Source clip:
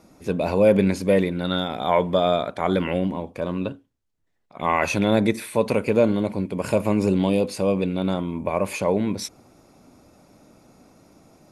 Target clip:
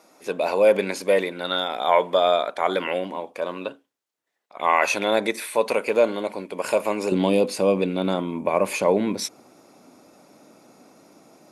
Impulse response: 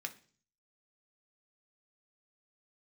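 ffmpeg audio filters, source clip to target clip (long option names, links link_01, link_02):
-af "asetnsamples=nb_out_samples=441:pad=0,asendcmd='7.12 highpass f 240',highpass=500,volume=3dB"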